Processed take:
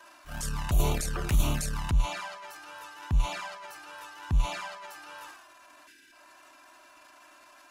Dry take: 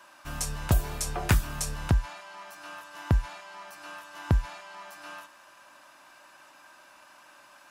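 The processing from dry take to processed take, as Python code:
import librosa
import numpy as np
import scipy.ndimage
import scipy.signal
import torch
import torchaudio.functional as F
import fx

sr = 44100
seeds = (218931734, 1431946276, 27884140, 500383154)

y = fx.spec_box(x, sr, start_s=5.87, length_s=0.25, low_hz=480.0, high_hz=1400.0, gain_db=-22)
y = fx.env_flanger(y, sr, rest_ms=3.3, full_db=-24.5)
y = fx.transient(y, sr, attack_db=-11, sustain_db=9)
y = y * 10.0 ** (2.5 / 20.0)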